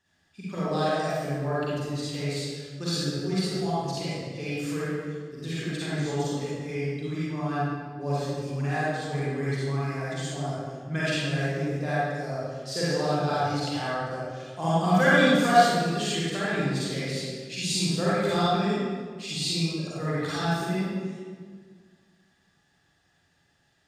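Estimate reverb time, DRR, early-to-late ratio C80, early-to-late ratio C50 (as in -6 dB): 1.7 s, -10.0 dB, -2.5 dB, -7.0 dB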